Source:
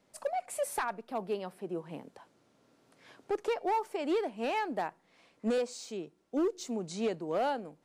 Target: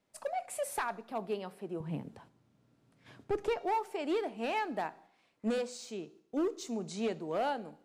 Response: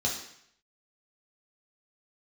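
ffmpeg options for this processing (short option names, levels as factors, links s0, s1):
-filter_complex "[0:a]agate=range=0.447:threshold=0.00126:ratio=16:detection=peak,asettb=1/sr,asplit=3[s0][s1][s2];[s0]atrim=end=1.804[s3];[s1]atrim=start=1.8:end=3.58,asetpts=PTS-STARTPTS,afade=t=in:d=0.004:c=qsin,afade=t=out:st=1.776:d=0.004:c=qsin,bass=f=250:g=14,treble=f=4000:g=-1[s4];[s2]atrim=start=3.576[s5];[s3][s4]acrossfade=d=0.004:c1=hsin:c2=qsin[s6];[s6][s5]acrossfade=d=0.004:c1=qsin:c2=hsin,asplit=2[s7][s8];[1:a]atrim=start_sample=2205[s9];[s8][s9]afir=irnorm=-1:irlink=0,volume=0.0841[s10];[s7][s10]amix=inputs=2:normalize=0,volume=0.891"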